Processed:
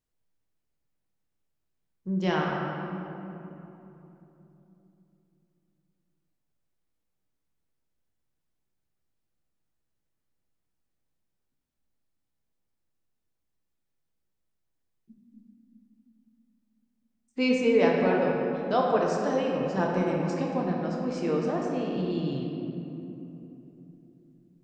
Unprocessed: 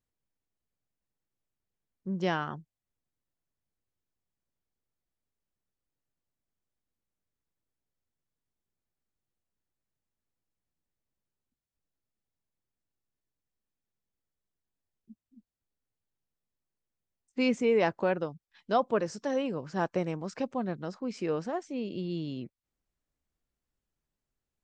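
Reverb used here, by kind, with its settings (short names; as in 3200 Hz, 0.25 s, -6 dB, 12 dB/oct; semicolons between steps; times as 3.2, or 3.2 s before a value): shoebox room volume 150 m³, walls hard, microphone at 0.54 m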